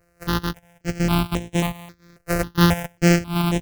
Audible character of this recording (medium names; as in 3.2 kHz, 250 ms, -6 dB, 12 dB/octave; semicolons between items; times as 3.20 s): a buzz of ramps at a fixed pitch in blocks of 256 samples; tremolo triangle 1.1 Hz, depth 45%; notches that jump at a steady rate 3.7 Hz 930–4600 Hz